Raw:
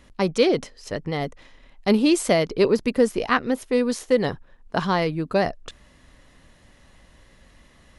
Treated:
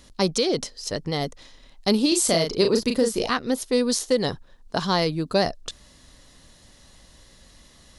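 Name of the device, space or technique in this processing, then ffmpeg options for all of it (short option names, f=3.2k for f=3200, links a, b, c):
over-bright horn tweeter: -filter_complex "[0:a]asettb=1/sr,asplit=3[a][b][c];[a]atrim=end=2.084[d];[b]atrim=start=2.08:end=3.3,asetpts=PTS-STARTPTS,afade=t=in:d=0.004:c=qsin,afade=t=out:st=1.216:d=0.004:c=qsin,asplit=2[e][f];[f]adelay=36,volume=-5dB[g];[e][g]amix=inputs=2:normalize=0,atrim=end_sample=53802[h];[c]atrim=start=3.296[i];[d][h]acrossfade=d=0.004:c1=hsin:c2=qsin[j];[j][i]acrossfade=d=0.004:c1=qsin:c2=hsin,highshelf=f=3.2k:t=q:w=1.5:g=8,alimiter=limit=-10dB:level=0:latency=1:release=195"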